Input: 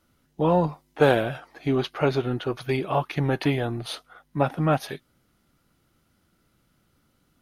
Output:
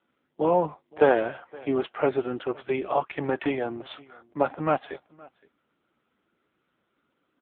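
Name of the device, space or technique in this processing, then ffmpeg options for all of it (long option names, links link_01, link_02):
satellite phone: -af "highpass=300,lowpass=3100,aecho=1:1:518:0.0631,volume=1dB" -ar 8000 -c:a libopencore_amrnb -b:a 6700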